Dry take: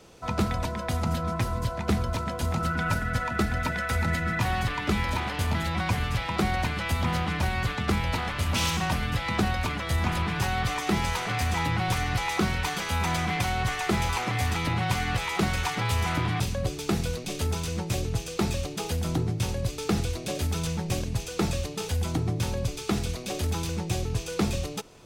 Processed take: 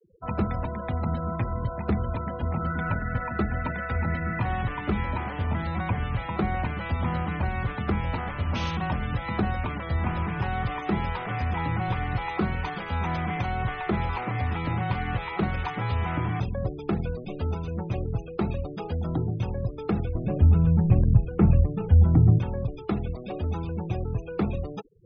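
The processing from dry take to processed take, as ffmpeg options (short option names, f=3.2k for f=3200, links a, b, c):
-filter_complex "[0:a]asettb=1/sr,asplit=3[a][b][c];[a]atrim=end=20.154[d];[b]atrim=start=20.15:end=22.39,asetpts=PTS-STARTPTS,afade=t=in:d=0.004:c=qsin,afade=t=out:st=2.236:d=0.004:c=qsin,bass=f=250:g=12,treble=f=4k:g=-11[e];[c]atrim=start=22.386[f];[d][e]acrossfade=d=0.004:c1=hsin:c2=qsin[g];[g][f]acrossfade=d=0.004:c1=qsin:c2=hsin,lowpass=f=1.6k:p=1,afftfilt=real='re*gte(hypot(re,im),0.0126)':imag='im*gte(hypot(re,im),0.0126)':win_size=1024:overlap=0.75"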